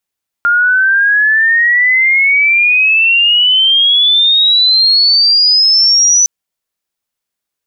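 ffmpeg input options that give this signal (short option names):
-f lavfi -i "aevalsrc='pow(10,(-7+1.5*t/5.81)/20)*sin(2*PI*1400*5.81/log(6000/1400)*(exp(log(6000/1400)*t/5.81)-1))':d=5.81:s=44100"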